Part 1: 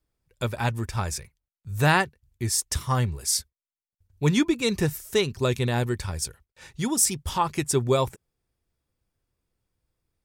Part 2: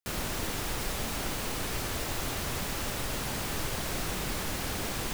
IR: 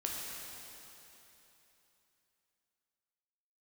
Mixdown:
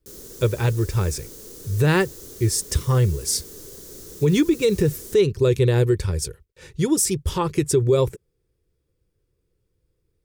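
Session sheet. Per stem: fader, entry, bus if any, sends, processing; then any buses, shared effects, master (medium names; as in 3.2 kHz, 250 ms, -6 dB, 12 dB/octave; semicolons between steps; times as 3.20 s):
+1.0 dB, 0.00 s, no send, peaking EQ 240 Hz -13.5 dB 0.27 oct
-6.0 dB, 0.00 s, no send, fifteen-band graphic EQ 400 Hz +7 dB, 2.5 kHz -9 dB, 6.3 kHz +5 dB; pre-emphasis filter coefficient 0.8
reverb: none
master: resonant low shelf 570 Hz +7 dB, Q 3; peak limiter -9.5 dBFS, peak gain reduction 9 dB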